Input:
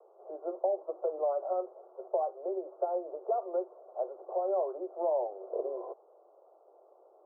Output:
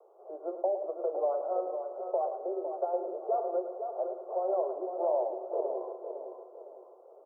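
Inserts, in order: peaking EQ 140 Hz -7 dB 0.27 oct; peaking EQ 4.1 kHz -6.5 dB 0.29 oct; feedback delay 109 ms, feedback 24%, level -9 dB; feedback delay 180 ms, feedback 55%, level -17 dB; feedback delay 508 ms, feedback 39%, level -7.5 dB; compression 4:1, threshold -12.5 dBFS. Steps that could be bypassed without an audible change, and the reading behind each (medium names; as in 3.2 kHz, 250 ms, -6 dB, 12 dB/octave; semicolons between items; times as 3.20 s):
peaking EQ 140 Hz: input has nothing below 300 Hz; peaking EQ 4.1 kHz: input has nothing above 1.1 kHz; compression, threshold -12.5 dBFS: peak at its input -18.0 dBFS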